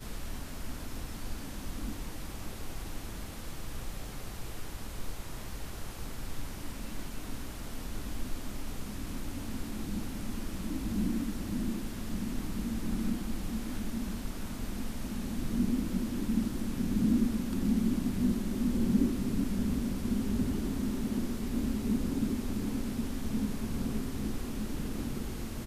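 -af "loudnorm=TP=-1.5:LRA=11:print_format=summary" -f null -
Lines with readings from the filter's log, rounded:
Input Integrated:    -35.3 LUFS
Input True Peak:     -14.9 dBTP
Input LRA:            12.1 LU
Input Threshold:     -45.3 LUFS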